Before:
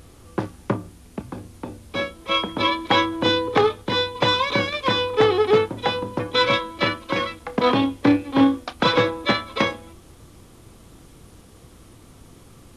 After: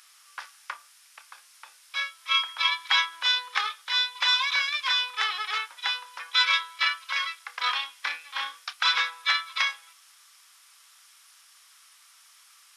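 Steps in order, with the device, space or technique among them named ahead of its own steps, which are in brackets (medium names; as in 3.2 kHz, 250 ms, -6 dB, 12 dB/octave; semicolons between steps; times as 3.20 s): headphones lying on a table (high-pass 1.3 kHz 24 dB/octave; peaking EQ 5.3 kHz +6 dB 0.26 oct)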